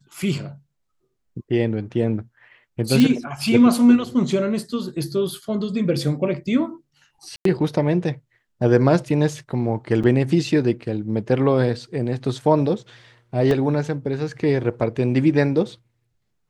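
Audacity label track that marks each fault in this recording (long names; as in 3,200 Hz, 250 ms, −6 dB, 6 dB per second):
3.000000	3.000000	click −6 dBFS
7.360000	7.450000	drop-out 93 ms
10.030000	10.040000	drop-out 5.9 ms
13.510000	13.510000	drop-out 2.1 ms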